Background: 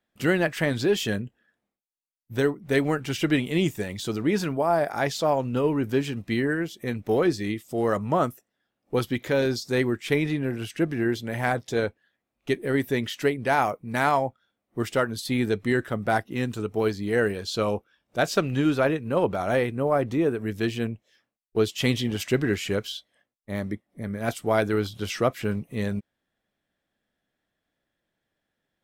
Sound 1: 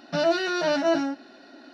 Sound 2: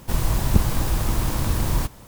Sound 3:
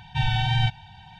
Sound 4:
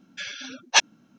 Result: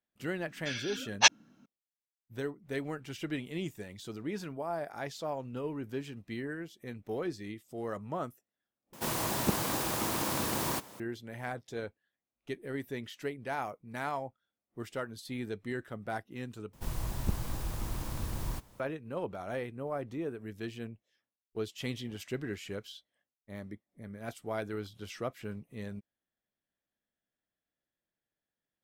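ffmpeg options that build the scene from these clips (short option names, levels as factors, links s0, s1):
-filter_complex "[2:a]asplit=2[s0][s1];[0:a]volume=0.211[s2];[s0]highpass=250[s3];[s2]asplit=3[s4][s5][s6];[s4]atrim=end=8.934[s7];[s3]atrim=end=2.07,asetpts=PTS-STARTPTS,volume=0.75[s8];[s5]atrim=start=10.996:end=16.734[s9];[s1]atrim=end=2.07,asetpts=PTS-STARTPTS,volume=0.2[s10];[s6]atrim=start=18.796[s11];[4:a]atrim=end=1.18,asetpts=PTS-STARTPTS,volume=0.668,afade=t=in:d=0.004:c=hsin,afade=t=out:st=1.176:d=0.004:c=hsin,adelay=480[s12];[s7][s8]acrossfade=d=0.004:c1=hsin:c2=hsin[s13];[s13][s9]acrossfade=d=0.004:c1=hsin:c2=hsin[s14];[s14][s10]acrossfade=d=0.004:c1=hsin:c2=hsin[s15];[s15][s11]acrossfade=d=0.004:c1=hsin:c2=hsin[s16];[s16][s12]amix=inputs=2:normalize=0"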